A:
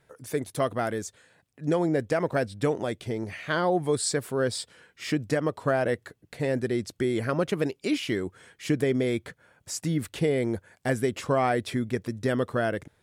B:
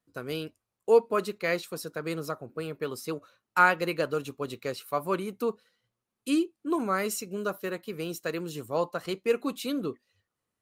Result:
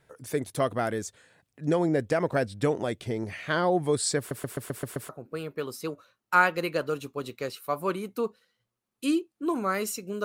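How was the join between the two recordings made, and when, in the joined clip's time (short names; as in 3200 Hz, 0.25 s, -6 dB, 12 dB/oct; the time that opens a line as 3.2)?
A
4.18 stutter in place 0.13 s, 7 plays
5.09 switch to B from 2.33 s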